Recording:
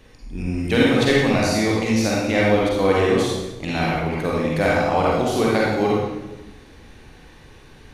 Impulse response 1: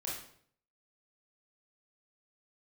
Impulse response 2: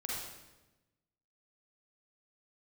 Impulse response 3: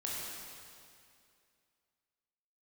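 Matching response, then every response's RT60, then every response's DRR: 2; 0.60, 1.1, 2.4 seconds; −5.5, −5.0, −5.5 decibels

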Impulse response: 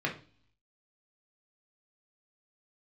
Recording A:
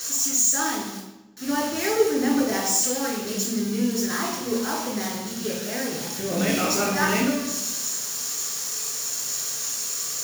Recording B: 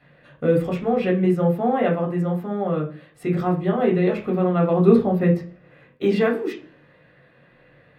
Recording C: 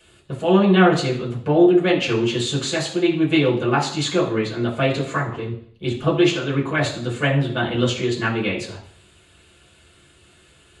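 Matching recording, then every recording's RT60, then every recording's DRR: B; 1.1 s, non-exponential decay, 0.60 s; −2.0, −1.0, −5.5 decibels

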